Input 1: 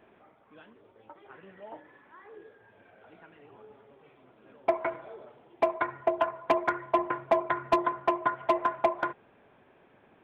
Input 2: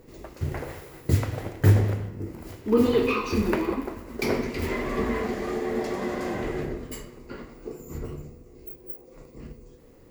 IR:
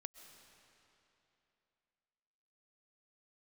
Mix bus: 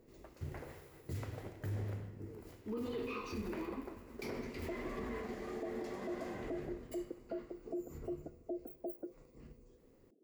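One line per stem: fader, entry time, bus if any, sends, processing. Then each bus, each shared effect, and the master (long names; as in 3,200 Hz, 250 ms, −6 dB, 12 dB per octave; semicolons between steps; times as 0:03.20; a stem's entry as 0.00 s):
−3.0 dB, 0.00 s, no send, inverse Chebyshev low-pass filter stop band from 950 Hz, stop band 40 dB; reverb reduction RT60 1.2 s; high-pass filter 230 Hz 24 dB per octave
−16.5 dB, 0.00 s, send −4 dB, no processing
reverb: on, RT60 3.0 s, pre-delay 90 ms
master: brickwall limiter −32.5 dBFS, peak gain reduction 12 dB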